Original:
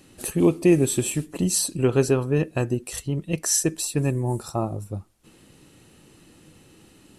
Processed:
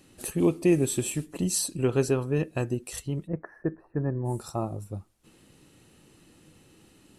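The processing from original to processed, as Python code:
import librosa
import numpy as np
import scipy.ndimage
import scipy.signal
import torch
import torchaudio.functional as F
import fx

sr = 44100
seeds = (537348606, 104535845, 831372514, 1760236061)

y = fx.ellip_lowpass(x, sr, hz=1700.0, order=4, stop_db=50, at=(3.26, 4.24), fade=0.02)
y = F.gain(torch.from_numpy(y), -4.5).numpy()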